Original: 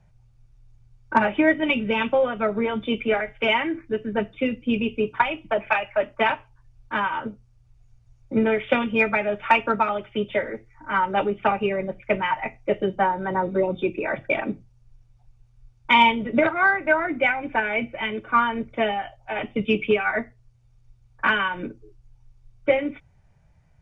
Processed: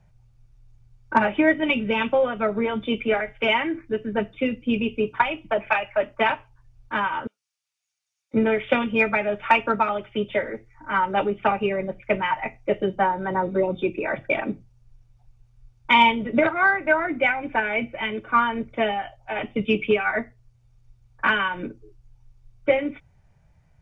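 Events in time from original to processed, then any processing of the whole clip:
7.27–8.34 s: Bessel high-pass 3 kHz

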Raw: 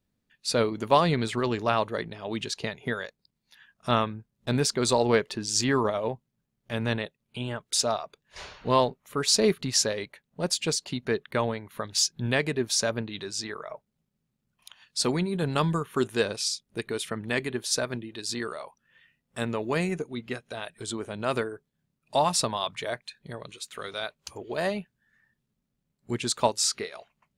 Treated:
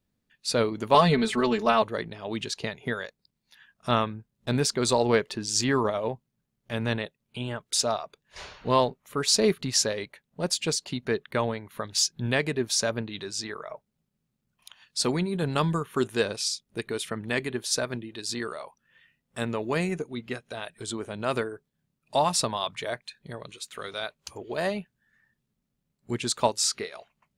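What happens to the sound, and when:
0.94–1.82 s: comb 4.6 ms, depth 98%

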